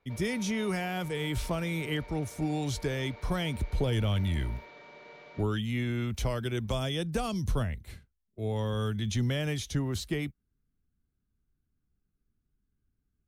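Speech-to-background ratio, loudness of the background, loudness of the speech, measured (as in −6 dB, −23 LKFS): 17.5 dB, −49.5 LKFS, −32.0 LKFS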